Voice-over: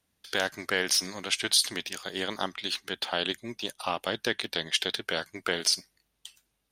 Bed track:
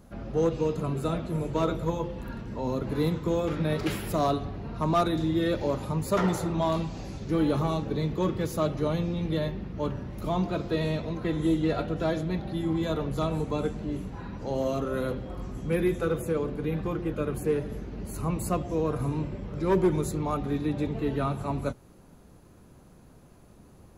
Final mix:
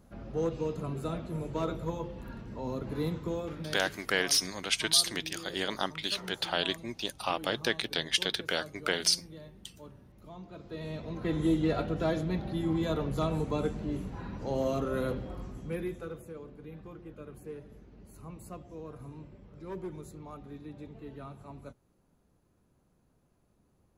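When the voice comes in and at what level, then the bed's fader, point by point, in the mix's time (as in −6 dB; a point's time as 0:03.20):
3.40 s, −1.0 dB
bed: 0:03.23 −6 dB
0:04.18 −19.5 dB
0:10.43 −19.5 dB
0:11.32 −2 dB
0:15.22 −2 dB
0:16.32 −16.5 dB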